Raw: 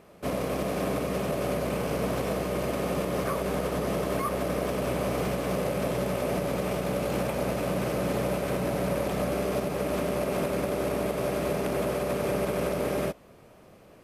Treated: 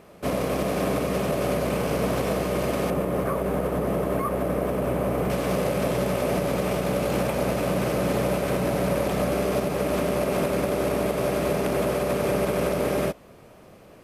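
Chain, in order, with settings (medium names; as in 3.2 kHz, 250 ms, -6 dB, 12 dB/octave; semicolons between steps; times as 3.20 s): 2.90–5.30 s: peaking EQ 5.1 kHz -12.5 dB 2.1 oct; trim +4 dB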